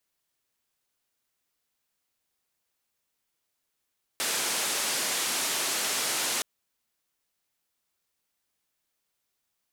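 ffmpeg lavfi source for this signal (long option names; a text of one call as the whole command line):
ffmpeg -f lavfi -i "anoisesrc=color=white:duration=2.22:sample_rate=44100:seed=1,highpass=frequency=240,lowpass=frequency=10000,volume=-20.7dB" out.wav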